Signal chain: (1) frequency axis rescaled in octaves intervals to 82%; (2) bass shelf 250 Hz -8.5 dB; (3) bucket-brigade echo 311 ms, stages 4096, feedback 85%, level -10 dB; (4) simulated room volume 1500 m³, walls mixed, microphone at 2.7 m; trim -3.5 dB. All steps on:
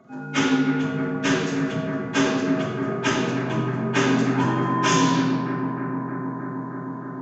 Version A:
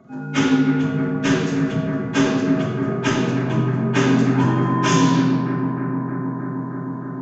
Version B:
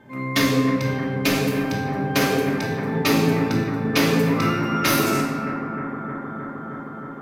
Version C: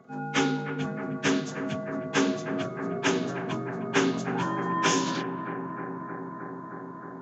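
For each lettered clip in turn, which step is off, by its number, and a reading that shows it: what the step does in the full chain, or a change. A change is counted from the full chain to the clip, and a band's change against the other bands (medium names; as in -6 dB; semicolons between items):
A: 2, 125 Hz band +6.0 dB; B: 1, 1 kHz band -2.0 dB; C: 4, echo-to-direct 4.5 dB to -6.5 dB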